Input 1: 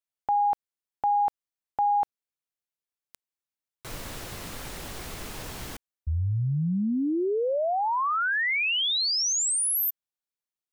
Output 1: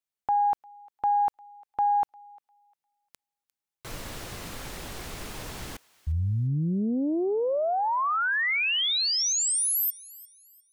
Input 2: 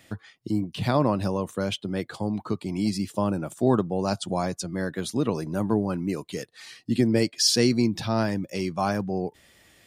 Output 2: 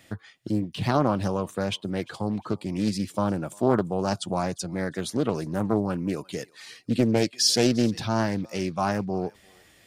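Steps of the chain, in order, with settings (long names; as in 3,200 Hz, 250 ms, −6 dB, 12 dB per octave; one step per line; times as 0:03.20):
feedback echo with a high-pass in the loop 351 ms, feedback 32%, high-pass 1,200 Hz, level −21 dB
highs frequency-modulated by the lows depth 0.39 ms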